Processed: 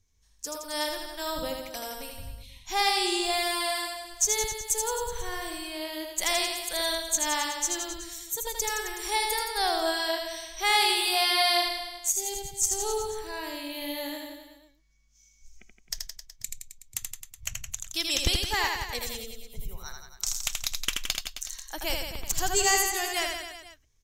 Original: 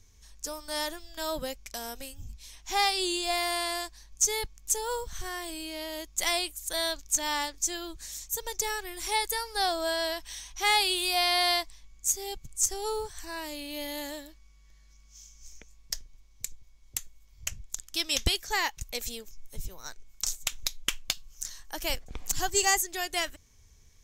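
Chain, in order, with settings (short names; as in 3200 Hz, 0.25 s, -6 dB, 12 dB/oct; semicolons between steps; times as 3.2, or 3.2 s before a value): spectral noise reduction 13 dB; 3.83–4.8 crackle 96/s -46 dBFS; reverse bouncing-ball echo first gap 80 ms, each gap 1.1×, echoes 5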